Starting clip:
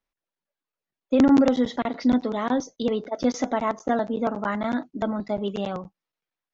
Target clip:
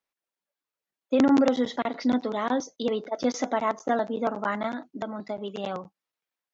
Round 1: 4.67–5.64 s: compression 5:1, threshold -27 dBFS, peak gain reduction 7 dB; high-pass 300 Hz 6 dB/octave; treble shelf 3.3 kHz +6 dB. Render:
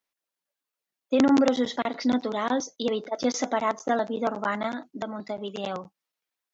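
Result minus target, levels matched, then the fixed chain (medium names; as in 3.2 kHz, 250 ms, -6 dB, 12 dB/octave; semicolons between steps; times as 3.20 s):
8 kHz band +4.5 dB
4.67–5.64 s: compression 5:1, threshold -27 dBFS, peak gain reduction 7 dB; high-pass 300 Hz 6 dB/octave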